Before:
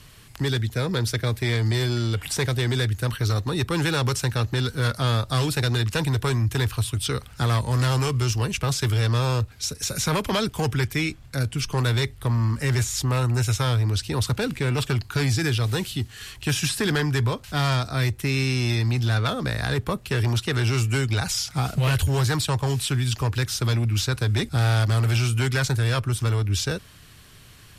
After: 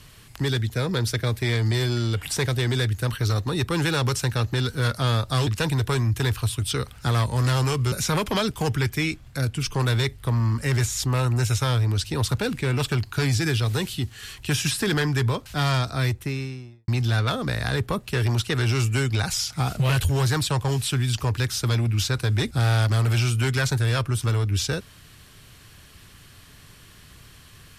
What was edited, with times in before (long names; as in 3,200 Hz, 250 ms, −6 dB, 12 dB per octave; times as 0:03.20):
0:05.47–0:05.82: remove
0:08.27–0:09.90: remove
0:17.93–0:18.86: fade out and dull